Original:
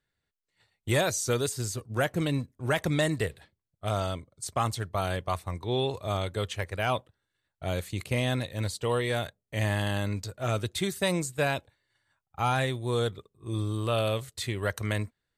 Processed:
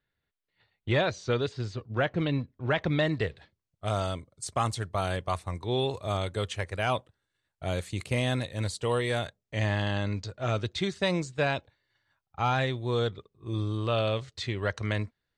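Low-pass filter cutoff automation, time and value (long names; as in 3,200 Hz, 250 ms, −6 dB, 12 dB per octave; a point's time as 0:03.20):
low-pass filter 24 dB per octave
0:02.98 4,100 Hz
0:04.01 10,000 Hz
0:09.08 10,000 Hz
0:09.73 5,900 Hz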